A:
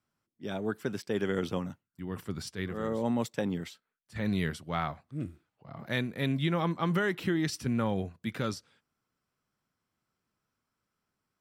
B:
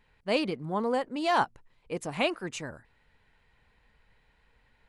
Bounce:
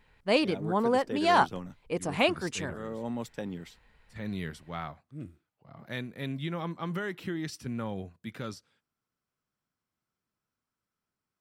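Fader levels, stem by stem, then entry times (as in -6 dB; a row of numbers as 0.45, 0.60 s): -5.5, +2.5 dB; 0.00, 0.00 s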